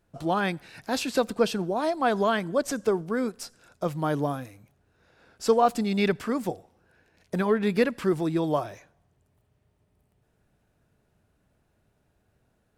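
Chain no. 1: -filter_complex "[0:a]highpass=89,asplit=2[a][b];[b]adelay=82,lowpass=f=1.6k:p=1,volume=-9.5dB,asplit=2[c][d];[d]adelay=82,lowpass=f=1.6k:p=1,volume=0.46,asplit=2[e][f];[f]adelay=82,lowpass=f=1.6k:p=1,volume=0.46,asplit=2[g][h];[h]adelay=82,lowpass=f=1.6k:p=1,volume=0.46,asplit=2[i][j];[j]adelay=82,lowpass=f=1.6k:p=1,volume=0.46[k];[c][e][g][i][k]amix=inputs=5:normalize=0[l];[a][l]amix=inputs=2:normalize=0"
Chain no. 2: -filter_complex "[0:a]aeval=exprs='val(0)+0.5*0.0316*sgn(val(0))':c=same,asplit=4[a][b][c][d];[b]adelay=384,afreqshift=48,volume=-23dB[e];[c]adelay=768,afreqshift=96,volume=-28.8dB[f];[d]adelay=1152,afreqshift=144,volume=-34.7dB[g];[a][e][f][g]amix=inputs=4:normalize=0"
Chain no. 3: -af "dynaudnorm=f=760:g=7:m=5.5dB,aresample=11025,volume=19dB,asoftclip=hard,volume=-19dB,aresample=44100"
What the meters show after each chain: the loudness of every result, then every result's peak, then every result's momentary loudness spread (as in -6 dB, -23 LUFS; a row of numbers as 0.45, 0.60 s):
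-26.5, -27.0, -26.0 LUFS; -7.5, -8.0, -16.5 dBFS; 12, 14, 10 LU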